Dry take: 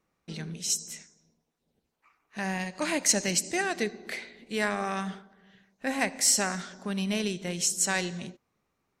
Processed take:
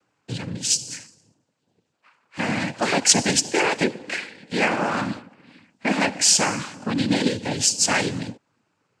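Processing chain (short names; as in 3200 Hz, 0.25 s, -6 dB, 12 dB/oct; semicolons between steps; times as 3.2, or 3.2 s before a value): noise vocoder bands 8; gain +8 dB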